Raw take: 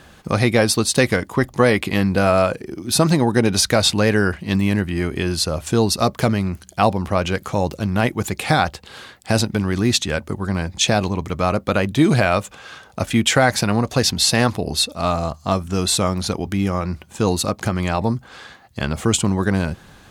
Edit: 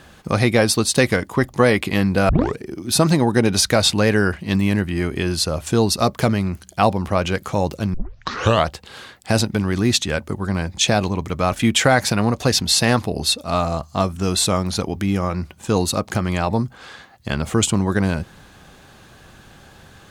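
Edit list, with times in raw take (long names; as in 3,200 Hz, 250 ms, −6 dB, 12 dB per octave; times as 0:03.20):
0:02.29: tape start 0.28 s
0:07.94: tape start 0.77 s
0:11.52–0:13.03: remove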